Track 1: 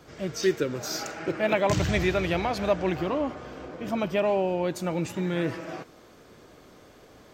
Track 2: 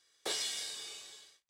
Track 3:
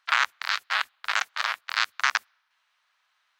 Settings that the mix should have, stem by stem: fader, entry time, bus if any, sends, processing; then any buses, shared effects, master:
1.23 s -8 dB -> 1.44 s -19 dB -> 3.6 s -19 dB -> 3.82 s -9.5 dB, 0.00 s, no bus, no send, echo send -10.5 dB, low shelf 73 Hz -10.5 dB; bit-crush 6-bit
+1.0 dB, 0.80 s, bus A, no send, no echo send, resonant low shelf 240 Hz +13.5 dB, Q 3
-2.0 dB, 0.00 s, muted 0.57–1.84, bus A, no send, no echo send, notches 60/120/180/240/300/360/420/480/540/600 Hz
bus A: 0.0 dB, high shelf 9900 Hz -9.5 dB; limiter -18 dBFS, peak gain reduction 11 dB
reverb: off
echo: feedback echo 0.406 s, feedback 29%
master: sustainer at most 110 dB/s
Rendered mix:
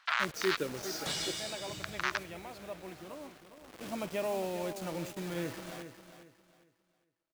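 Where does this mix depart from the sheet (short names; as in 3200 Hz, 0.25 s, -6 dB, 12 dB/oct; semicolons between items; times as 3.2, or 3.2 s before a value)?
stem 3 -2.0 dB -> +8.0 dB; master: missing sustainer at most 110 dB/s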